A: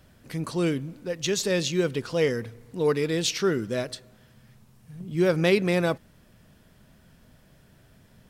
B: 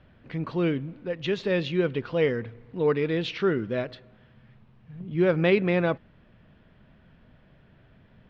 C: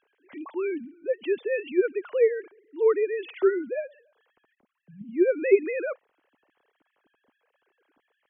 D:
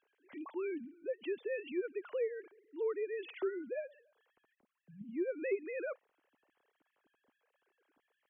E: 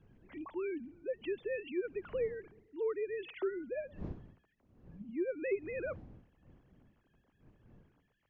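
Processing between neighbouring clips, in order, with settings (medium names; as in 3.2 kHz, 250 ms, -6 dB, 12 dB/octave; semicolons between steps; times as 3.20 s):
low-pass 3.2 kHz 24 dB/octave
formants replaced by sine waves
compression 2.5:1, threshold -29 dBFS, peak gain reduction 11.5 dB; trim -7 dB
wind noise 200 Hz -56 dBFS; trim +1 dB; MP3 56 kbps 16 kHz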